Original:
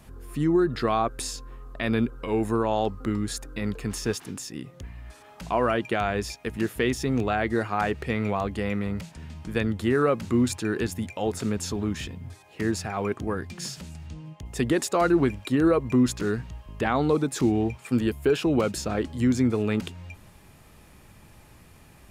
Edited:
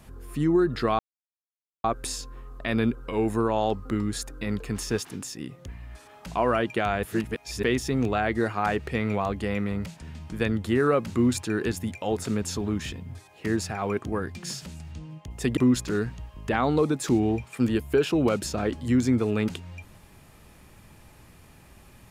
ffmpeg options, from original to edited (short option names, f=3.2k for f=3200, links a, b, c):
-filter_complex "[0:a]asplit=5[a][b][c][d][e];[a]atrim=end=0.99,asetpts=PTS-STARTPTS,afade=t=out:st=0.986:d=0.004:c=hsin,apad=pad_dur=0.85[f];[b]atrim=start=0.99:end=6.182,asetpts=PTS-STARTPTS,afade=t=in:d=0.004:c=hsin[g];[c]atrim=start=6.178:end=6.782,asetpts=PTS-STARTPTS,areverse[h];[d]atrim=start=6.778:end=14.722[i];[e]atrim=start=15.888[j];[f][g]concat=n=2:v=0:a=1[k];[k][h]acrossfade=d=0.004:c1=hsin:c2=hsin[l];[l][i]acrossfade=d=0.004:c1=hsin:c2=hsin[m];[m][j]acrossfade=d=0.004:c1=hsin:c2=hsin"